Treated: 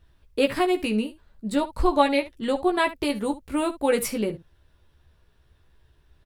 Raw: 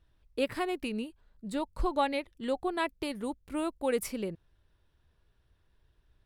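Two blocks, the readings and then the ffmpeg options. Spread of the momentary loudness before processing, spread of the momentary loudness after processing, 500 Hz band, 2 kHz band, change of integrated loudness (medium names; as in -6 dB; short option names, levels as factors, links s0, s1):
9 LU, 9 LU, +9.0 dB, +9.0 dB, +9.0 dB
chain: -af "aecho=1:1:14|71:0.596|0.168,volume=2.37"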